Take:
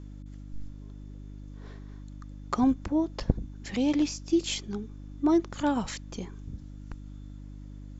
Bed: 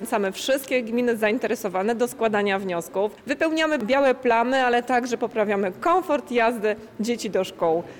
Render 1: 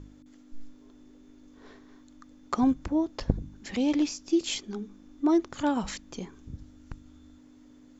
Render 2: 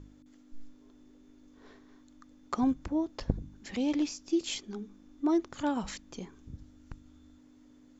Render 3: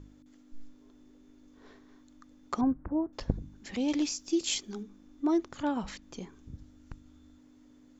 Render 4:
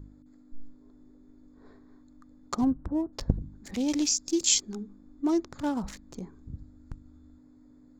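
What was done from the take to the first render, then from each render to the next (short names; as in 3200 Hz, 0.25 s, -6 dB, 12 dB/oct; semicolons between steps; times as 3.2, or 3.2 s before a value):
de-hum 50 Hz, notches 4
gain -4 dB
2.61–3.13 inverse Chebyshev low-pass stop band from 4100 Hz, stop band 50 dB; 3.88–4.83 high shelf 4000 Hz +9 dB; 5.57–6.02 air absorption 78 m
Wiener smoothing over 15 samples; tone controls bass +5 dB, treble +13 dB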